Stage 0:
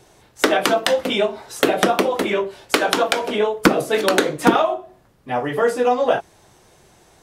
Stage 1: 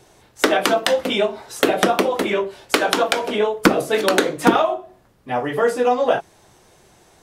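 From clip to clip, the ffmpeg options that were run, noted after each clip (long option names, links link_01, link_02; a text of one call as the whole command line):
ffmpeg -i in.wav -af "bandreject=frequency=50:width_type=h:width=6,bandreject=frequency=100:width_type=h:width=6,bandreject=frequency=150:width_type=h:width=6" out.wav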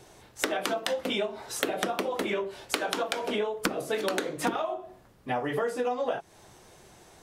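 ffmpeg -i in.wav -af "acompressor=threshold=-25dB:ratio=6,volume=-1.5dB" out.wav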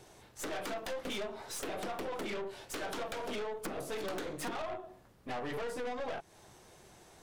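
ffmpeg -i in.wav -af "aeval=exprs='(tanh(50.1*val(0)+0.55)-tanh(0.55))/50.1':channel_layout=same,volume=-1.5dB" out.wav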